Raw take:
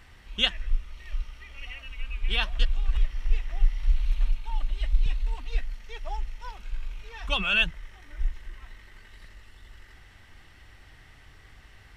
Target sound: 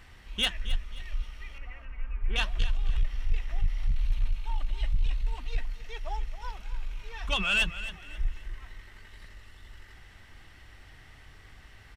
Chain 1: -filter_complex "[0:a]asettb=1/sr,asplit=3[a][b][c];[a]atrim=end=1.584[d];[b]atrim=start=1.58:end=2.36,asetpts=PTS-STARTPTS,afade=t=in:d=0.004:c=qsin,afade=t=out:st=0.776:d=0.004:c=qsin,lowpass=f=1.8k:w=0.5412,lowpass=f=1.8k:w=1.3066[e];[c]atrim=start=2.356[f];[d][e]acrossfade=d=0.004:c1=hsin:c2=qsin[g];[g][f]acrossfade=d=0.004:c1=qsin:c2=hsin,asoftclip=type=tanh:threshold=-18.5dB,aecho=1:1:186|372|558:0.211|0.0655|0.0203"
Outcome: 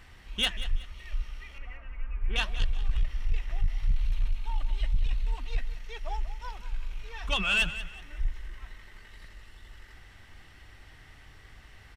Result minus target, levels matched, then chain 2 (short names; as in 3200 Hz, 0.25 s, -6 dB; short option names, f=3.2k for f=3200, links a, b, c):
echo 81 ms early
-filter_complex "[0:a]asettb=1/sr,asplit=3[a][b][c];[a]atrim=end=1.584[d];[b]atrim=start=1.58:end=2.36,asetpts=PTS-STARTPTS,afade=t=in:d=0.004:c=qsin,afade=t=out:st=0.776:d=0.004:c=qsin,lowpass=f=1.8k:w=0.5412,lowpass=f=1.8k:w=1.3066[e];[c]atrim=start=2.356[f];[d][e]acrossfade=d=0.004:c1=hsin:c2=qsin[g];[g][f]acrossfade=d=0.004:c1=qsin:c2=hsin,asoftclip=type=tanh:threshold=-18.5dB,aecho=1:1:267|534|801:0.211|0.0655|0.0203"